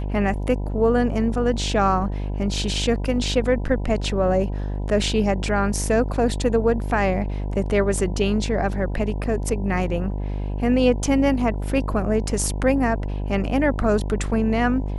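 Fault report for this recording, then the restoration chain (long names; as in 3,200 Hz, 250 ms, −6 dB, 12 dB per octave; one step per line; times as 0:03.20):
mains buzz 50 Hz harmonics 20 −26 dBFS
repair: hum removal 50 Hz, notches 20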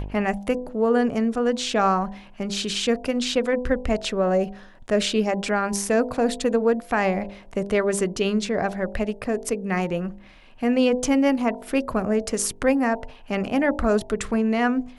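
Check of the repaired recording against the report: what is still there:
none of them is left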